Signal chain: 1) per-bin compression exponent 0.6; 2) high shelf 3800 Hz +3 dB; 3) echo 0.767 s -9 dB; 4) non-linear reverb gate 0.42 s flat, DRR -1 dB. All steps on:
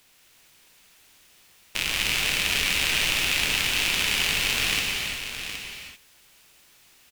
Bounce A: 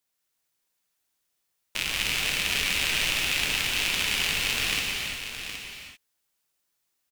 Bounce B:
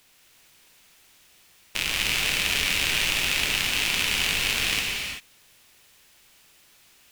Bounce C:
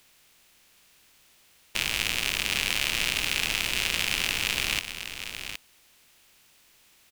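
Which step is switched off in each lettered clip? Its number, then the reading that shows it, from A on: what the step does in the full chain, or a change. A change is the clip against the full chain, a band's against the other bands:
1, loudness change -2.0 LU; 3, momentary loudness spread change -4 LU; 4, echo-to-direct 2.0 dB to -9.0 dB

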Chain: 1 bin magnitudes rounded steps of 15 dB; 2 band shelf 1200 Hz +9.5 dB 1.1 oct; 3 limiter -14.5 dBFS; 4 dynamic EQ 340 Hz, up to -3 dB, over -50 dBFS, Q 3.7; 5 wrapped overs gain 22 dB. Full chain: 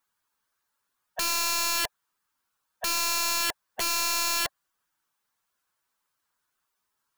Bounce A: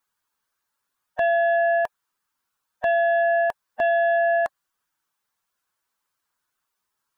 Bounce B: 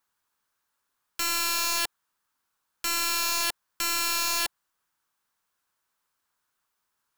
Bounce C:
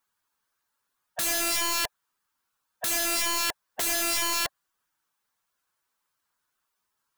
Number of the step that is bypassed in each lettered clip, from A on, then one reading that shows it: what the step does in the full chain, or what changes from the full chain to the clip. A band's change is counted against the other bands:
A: 5, loudness change +4.5 LU; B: 1, 500 Hz band -2.5 dB; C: 3, mean gain reduction 3.5 dB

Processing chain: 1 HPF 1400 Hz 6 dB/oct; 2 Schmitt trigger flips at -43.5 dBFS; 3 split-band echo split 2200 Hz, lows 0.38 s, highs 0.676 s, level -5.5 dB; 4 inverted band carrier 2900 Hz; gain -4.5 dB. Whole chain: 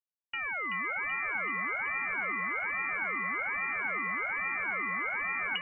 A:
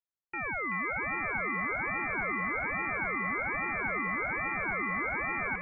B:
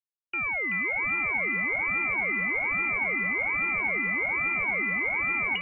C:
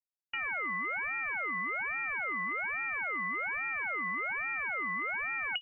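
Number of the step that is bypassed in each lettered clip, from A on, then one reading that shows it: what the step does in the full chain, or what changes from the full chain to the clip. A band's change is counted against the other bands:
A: 2, distortion -1 dB; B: 1, 1 kHz band -7.5 dB; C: 3, crest factor change -2.5 dB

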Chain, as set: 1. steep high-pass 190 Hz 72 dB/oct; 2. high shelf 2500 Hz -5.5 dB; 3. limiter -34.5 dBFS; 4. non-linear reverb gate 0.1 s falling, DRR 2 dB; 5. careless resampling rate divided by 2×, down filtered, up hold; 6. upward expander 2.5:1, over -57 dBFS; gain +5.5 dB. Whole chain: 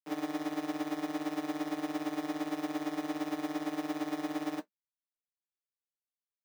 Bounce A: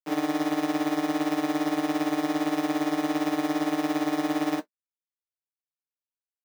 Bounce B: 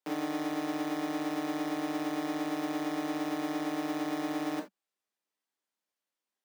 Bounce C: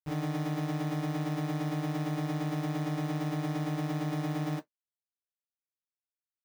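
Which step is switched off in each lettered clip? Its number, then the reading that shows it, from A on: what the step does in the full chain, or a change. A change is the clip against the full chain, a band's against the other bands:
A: 3, mean gain reduction 8.5 dB; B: 6, crest factor change -1.5 dB; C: 1, 125 Hz band +21.5 dB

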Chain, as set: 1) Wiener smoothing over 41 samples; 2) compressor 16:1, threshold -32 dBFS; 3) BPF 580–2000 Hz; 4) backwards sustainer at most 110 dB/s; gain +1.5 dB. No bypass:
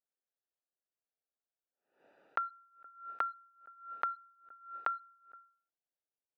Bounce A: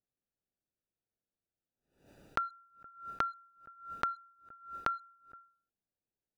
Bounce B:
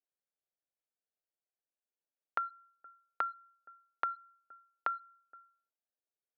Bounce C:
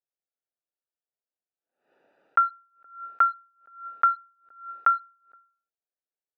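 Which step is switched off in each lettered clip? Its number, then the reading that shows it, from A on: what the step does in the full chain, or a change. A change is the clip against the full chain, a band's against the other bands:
3, crest factor change +2.0 dB; 4, momentary loudness spread change -3 LU; 2, mean gain reduction 10.0 dB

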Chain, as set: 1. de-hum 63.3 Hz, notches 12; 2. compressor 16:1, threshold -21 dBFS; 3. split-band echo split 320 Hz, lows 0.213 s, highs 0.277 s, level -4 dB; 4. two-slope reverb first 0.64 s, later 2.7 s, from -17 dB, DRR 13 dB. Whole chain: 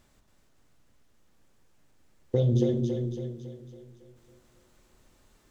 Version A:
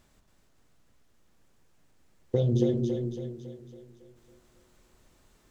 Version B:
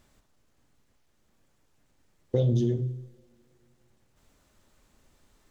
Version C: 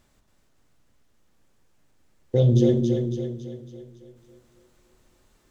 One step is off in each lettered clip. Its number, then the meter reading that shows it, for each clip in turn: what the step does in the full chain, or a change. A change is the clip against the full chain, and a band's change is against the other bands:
4, 125 Hz band -2.0 dB; 3, echo-to-direct -2.0 dB to -13.0 dB; 2, mean gain reduction 3.5 dB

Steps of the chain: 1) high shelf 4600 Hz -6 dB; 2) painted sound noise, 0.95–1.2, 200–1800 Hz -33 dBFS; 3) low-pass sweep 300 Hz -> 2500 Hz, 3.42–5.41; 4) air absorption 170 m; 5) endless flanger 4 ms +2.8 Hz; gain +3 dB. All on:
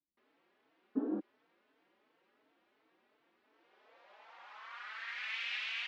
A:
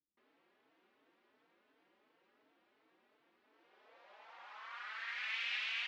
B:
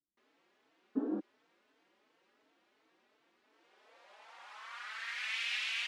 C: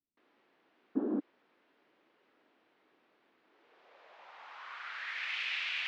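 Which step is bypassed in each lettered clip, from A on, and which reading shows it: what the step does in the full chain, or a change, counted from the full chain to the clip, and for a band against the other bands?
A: 2, crest factor change -3.0 dB; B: 4, 4 kHz band +3.0 dB; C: 5, crest factor change -2.0 dB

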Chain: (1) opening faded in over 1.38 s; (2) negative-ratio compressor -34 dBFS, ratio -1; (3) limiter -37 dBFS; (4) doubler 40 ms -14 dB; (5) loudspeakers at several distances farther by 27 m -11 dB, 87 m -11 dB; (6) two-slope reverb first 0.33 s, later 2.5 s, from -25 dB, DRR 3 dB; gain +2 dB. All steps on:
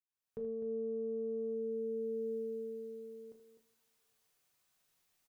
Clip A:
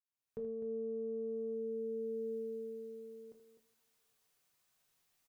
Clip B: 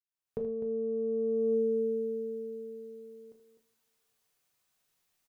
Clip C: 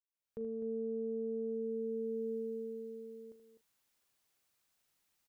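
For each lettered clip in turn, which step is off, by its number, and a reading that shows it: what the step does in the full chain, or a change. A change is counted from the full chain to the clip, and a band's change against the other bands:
4, loudness change -1.5 LU; 3, mean gain reduction 4.0 dB; 6, echo-to-direct -1.5 dB to -8.0 dB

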